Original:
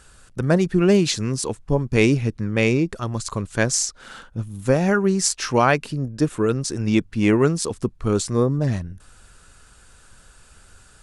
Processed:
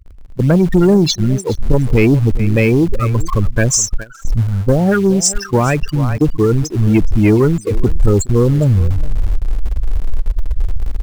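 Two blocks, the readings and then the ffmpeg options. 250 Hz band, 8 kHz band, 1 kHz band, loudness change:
+6.5 dB, +6.5 dB, +2.0 dB, +6.0 dB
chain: -filter_complex "[0:a]aeval=exprs='val(0)+0.5*0.0596*sgn(val(0))':c=same,afftfilt=real='re*gte(hypot(re,im),0.2)':imag='im*gte(hypot(re,im),0.2)':win_size=1024:overlap=0.75,aecho=1:1:417:0.119,asubboost=boost=5:cutoff=72,acrossover=split=320|3000[a][b][c];[b]acompressor=threshold=-22dB:ratio=8[d];[a][d][c]amix=inputs=3:normalize=0,asplit=2[e][f];[f]acrusher=bits=6:dc=4:mix=0:aa=0.000001,volume=-6.5dB[g];[e][g]amix=inputs=2:normalize=0,agate=range=-13dB:threshold=-22dB:ratio=16:detection=peak,acontrast=73,volume=-1dB"

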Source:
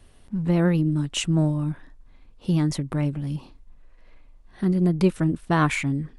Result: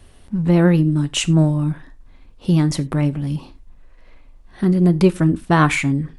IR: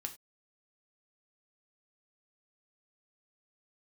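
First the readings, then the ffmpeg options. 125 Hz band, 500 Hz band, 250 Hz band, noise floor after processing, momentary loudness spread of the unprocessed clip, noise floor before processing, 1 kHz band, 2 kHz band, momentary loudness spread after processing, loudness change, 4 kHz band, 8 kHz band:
+6.0 dB, +6.5 dB, +6.0 dB, -46 dBFS, 11 LU, -52 dBFS, +6.5 dB, +6.5 dB, 11 LU, +6.0 dB, +6.0 dB, +6.0 dB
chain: -filter_complex "[0:a]asplit=2[a][b];[1:a]atrim=start_sample=2205[c];[b][c]afir=irnorm=-1:irlink=0,volume=-3dB[d];[a][d]amix=inputs=2:normalize=0,volume=2.5dB"

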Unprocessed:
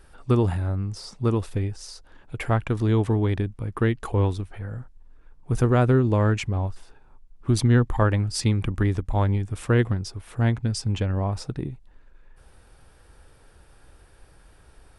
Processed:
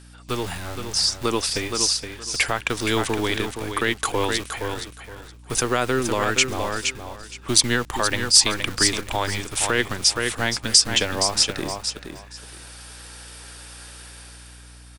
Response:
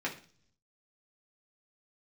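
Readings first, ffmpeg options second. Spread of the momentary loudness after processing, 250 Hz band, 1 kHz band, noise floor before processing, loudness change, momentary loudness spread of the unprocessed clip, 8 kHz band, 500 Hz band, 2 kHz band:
23 LU, -3.0 dB, +5.0 dB, -54 dBFS, +3.0 dB, 14 LU, +18.5 dB, +1.0 dB, +10.0 dB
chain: -filter_complex "[0:a]lowpass=8.1k,highshelf=f=3.8k:g=10.5,acrossover=split=220[a][b];[a]acrusher=bits=3:dc=4:mix=0:aa=0.000001[c];[b]dynaudnorm=f=190:g=9:m=11.5dB[d];[c][d]amix=inputs=2:normalize=0,aeval=exprs='val(0)+0.0112*(sin(2*PI*60*n/s)+sin(2*PI*2*60*n/s)/2+sin(2*PI*3*60*n/s)/3+sin(2*PI*4*60*n/s)/4+sin(2*PI*5*60*n/s)/5)':c=same,aecho=1:1:469|938|1407:0.398|0.0756|0.0144,alimiter=limit=-8dB:level=0:latency=1:release=106,tiltshelf=f=1.3k:g=-6.5"

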